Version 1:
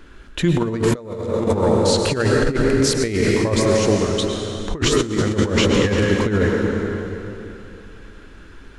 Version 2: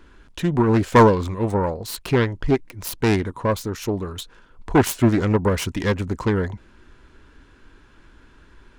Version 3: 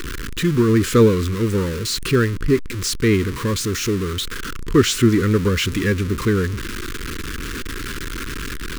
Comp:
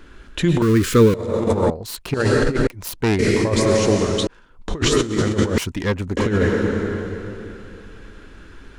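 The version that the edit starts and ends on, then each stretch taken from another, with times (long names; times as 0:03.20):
1
0:00.62–0:01.14: punch in from 3
0:01.70–0:02.14: punch in from 2
0:02.67–0:03.19: punch in from 2
0:04.27–0:04.68: punch in from 2
0:05.58–0:06.17: punch in from 2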